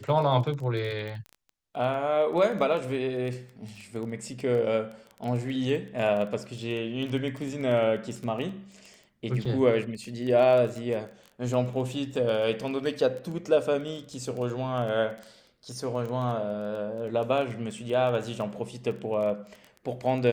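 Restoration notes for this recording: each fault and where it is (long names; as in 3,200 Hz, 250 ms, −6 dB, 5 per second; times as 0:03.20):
surface crackle 15 per second −33 dBFS
0:09.45–0:09.46: drop-out 5.1 ms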